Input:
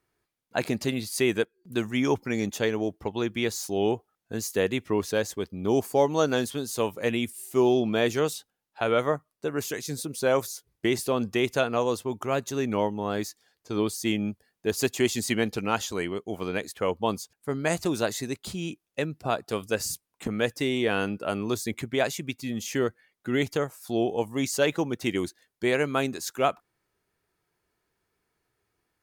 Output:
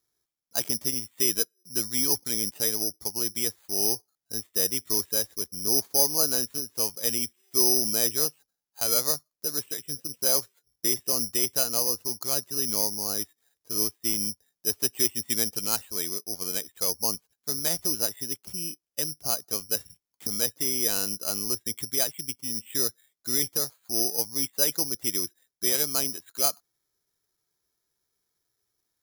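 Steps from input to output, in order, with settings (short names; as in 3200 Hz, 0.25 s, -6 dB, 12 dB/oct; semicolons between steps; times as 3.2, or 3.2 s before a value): careless resampling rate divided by 8×, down filtered, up zero stuff; gain -9.5 dB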